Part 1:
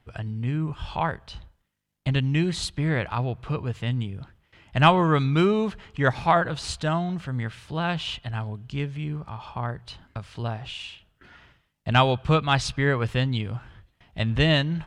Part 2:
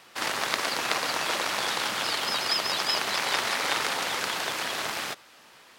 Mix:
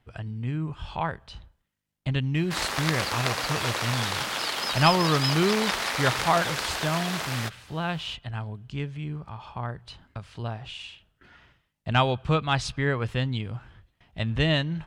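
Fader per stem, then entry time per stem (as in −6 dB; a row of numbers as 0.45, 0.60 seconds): −3.0, −1.0 decibels; 0.00, 2.35 seconds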